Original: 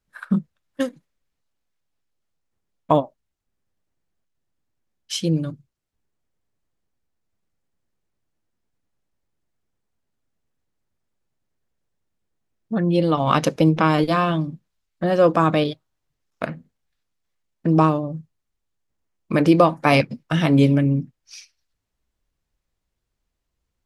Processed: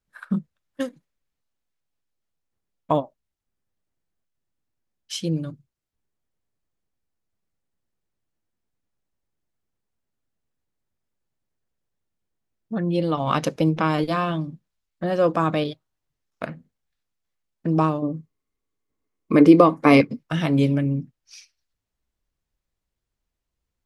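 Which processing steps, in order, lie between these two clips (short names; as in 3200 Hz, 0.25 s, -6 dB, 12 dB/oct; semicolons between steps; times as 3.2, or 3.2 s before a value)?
18.02–20.19 small resonant body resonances 290/420/1100/2100 Hz, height 11 dB, ringing for 35 ms; gain -4 dB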